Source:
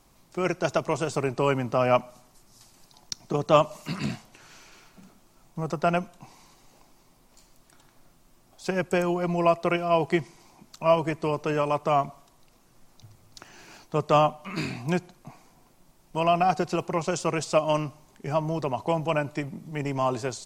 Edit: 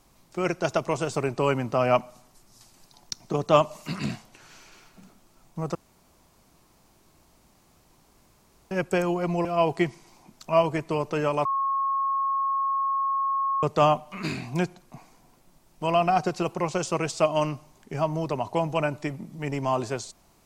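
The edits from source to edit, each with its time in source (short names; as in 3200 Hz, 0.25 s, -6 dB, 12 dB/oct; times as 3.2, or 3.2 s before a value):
5.75–8.71 room tone
9.45–9.78 cut
11.78–13.96 bleep 1090 Hz -22.5 dBFS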